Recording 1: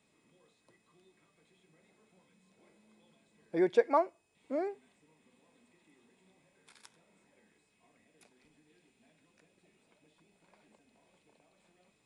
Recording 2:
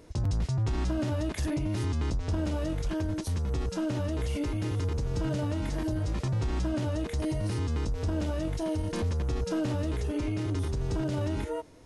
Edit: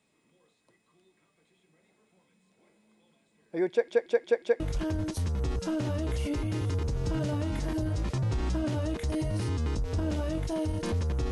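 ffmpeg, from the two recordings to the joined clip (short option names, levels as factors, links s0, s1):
-filter_complex "[0:a]apad=whole_dur=11.31,atrim=end=11.31,asplit=5[s0][s1][s2][s3][s4];[s0]atrim=end=3.882[s5];[s1]atrim=start=3.698:end=3.882[s6];[s2]atrim=start=3.698:end=3.882[s7];[s3]atrim=start=3.698:end=3.882[s8];[s4]atrim=start=3.698:end=3.882[s9];[1:a]atrim=start=2.698:end=9.41[s10];[s5][s6]acrossfade=d=0.004:c1=hsin:c2=hsin[s11];[s11][s7]acrossfade=d=0.004:c1=hsin:c2=hsin[s12];[s12][s8]acrossfade=d=0.004:c1=hsin:c2=hsin[s13];[s13][s9]acrossfade=d=0.004:c1=hsin:c2=hsin[s14];[s14][s10]acrossfade=d=0.004:c1=hsin:c2=hsin"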